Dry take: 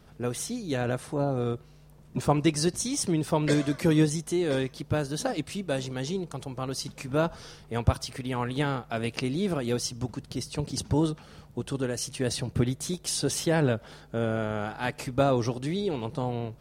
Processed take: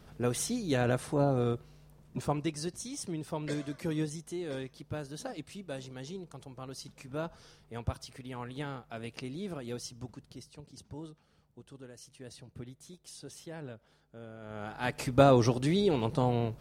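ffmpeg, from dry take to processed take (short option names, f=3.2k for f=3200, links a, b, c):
-af "volume=21.5dB,afade=t=out:st=1.25:d=1.28:silence=0.281838,afade=t=out:st=10.09:d=0.52:silence=0.375837,afade=t=in:st=14.4:d=0.2:silence=0.316228,afade=t=in:st=14.6:d=0.61:silence=0.266073"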